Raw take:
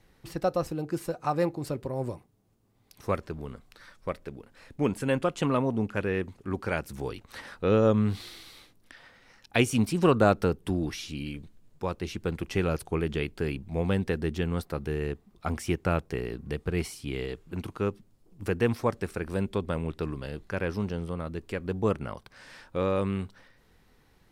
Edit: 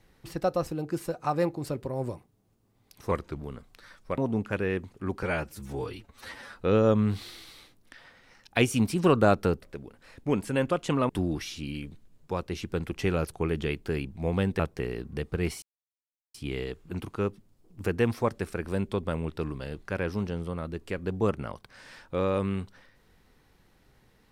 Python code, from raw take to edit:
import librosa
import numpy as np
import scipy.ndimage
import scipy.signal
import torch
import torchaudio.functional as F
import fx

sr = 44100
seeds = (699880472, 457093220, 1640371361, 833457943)

y = fx.edit(x, sr, fx.speed_span(start_s=3.11, length_s=0.25, speed=0.9),
    fx.move(start_s=4.15, length_s=1.47, to_s=10.61),
    fx.stretch_span(start_s=6.67, length_s=0.91, factor=1.5),
    fx.cut(start_s=14.11, length_s=1.82),
    fx.insert_silence(at_s=16.96, length_s=0.72), tone=tone)